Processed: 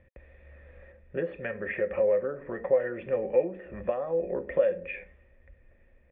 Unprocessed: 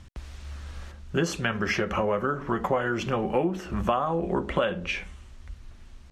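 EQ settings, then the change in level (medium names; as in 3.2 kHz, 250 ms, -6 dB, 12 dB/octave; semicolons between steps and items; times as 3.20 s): cascade formant filter e; +6.5 dB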